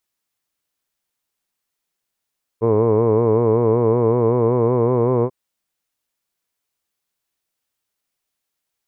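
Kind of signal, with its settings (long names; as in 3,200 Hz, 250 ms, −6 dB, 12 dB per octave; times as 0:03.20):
vowel by formant synthesis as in hood, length 2.69 s, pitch 110 Hz, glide +2 semitones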